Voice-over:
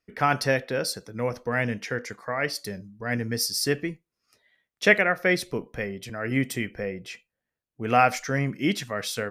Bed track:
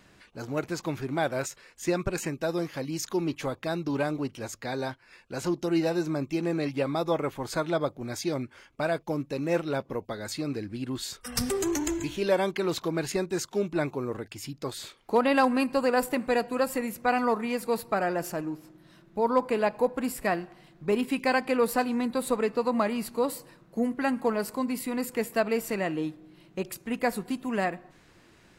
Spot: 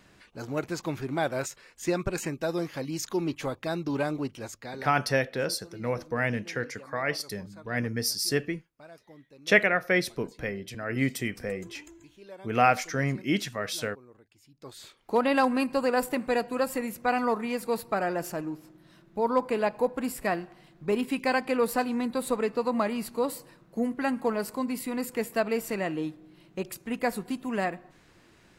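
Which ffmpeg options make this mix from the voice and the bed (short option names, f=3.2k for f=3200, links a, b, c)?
-filter_complex "[0:a]adelay=4650,volume=-2dB[a];[1:a]volume=20dB,afade=t=out:st=4.28:d=0.81:silence=0.0891251,afade=t=in:st=14.5:d=0.69:silence=0.0944061[b];[a][b]amix=inputs=2:normalize=0"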